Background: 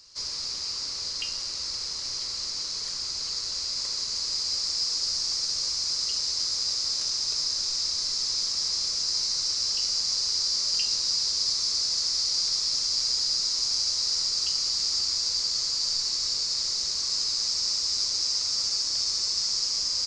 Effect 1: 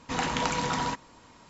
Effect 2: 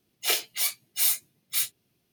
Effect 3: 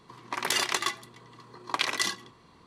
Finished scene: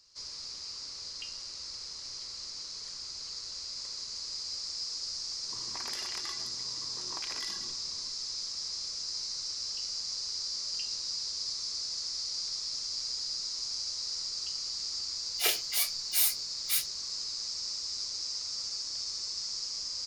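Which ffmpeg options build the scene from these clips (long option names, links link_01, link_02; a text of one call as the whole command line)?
ffmpeg -i bed.wav -i cue0.wav -i cue1.wav -i cue2.wav -filter_complex "[0:a]volume=-9.5dB[link_01];[3:a]acompressor=threshold=-36dB:ratio=6:attack=3.2:release=140:knee=1:detection=peak,atrim=end=2.66,asetpts=PTS-STARTPTS,volume=-4dB,afade=type=in:duration=0.004:curve=hsin,afade=type=out:start_time=2.656:duration=0.004:curve=hsin,adelay=5430[link_02];[2:a]atrim=end=2.12,asetpts=PTS-STARTPTS,volume=-3dB,afade=type=in:duration=0.004:curve=hsin,afade=type=out:start_time=2.116:duration=0.004:curve=hsin,adelay=15160[link_03];[link_01][link_02][link_03]amix=inputs=3:normalize=0" out.wav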